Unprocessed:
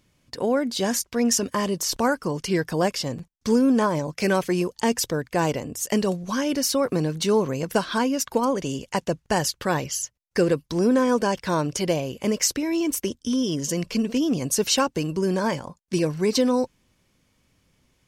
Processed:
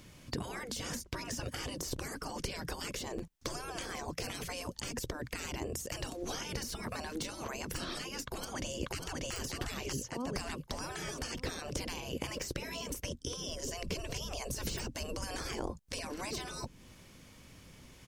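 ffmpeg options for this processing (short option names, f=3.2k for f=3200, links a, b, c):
-filter_complex "[0:a]asplit=3[a][b][c];[a]afade=t=out:st=4.92:d=0.02[d];[b]acompressor=threshold=-26dB:ratio=6:attack=3.2:release=140:knee=1:detection=peak,afade=t=in:st=4.92:d=0.02,afade=t=out:st=5.34:d=0.02[e];[c]afade=t=in:st=5.34:d=0.02[f];[d][e][f]amix=inputs=3:normalize=0,asplit=2[g][h];[h]afade=t=in:st=8.26:d=0.01,afade=t=out:st=9.33:d=0.01,aecho=0:1:590|1180|1770|2360|2950:0.749894|0.262463|0.091862|0.0321517|0.0112531[i];[g][i]amix=inputs=2:normalize=0,asettb=1/sr,asplit=3[j][k][l];[j]atrim=end=13.494[m];[k]atrim=start=13.49:end=15.94,asetpts=PTS-STARTPTS,afade=t=in:d=0.004:c=qsin,afade=t=out:st=2.446:d=0.004:c=qsin,bass=f=250:g=10,treble=f=4k:g=2[n];[l]atrim=start=15.936[o];[m][n]acrossfade=d=0.004:c1=hsin:c2=qsin[p];[p][o]acrossfade=d=0.004:c1=qsin:c2=hsin,deesser=0.55,afftfilt=real='re*lt(hypot(re,im),0.0708)':imag='im*lt(hypot(re,im),0.0708)':win_size=1024:overlap=0.75,acrossover=split=470[q][r];[r]acompressor=threshold=-53dB:ratio=4[s];[q][s]amix=inputs=2:normalize=0,volume=10dB"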